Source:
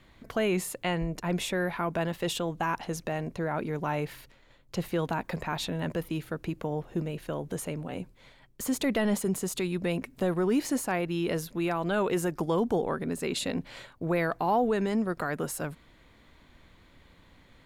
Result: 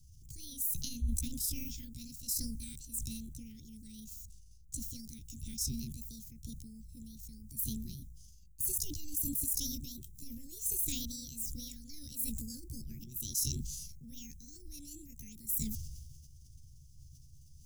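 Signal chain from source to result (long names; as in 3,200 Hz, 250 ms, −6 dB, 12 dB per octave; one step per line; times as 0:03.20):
pitch shift by two crossfaded delay taps +6.5 semitones
Chebyshev band-stop filter 120–6,900 Hz, order 3
level that may fall only so fast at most 32 dB per second
level +5.5 dB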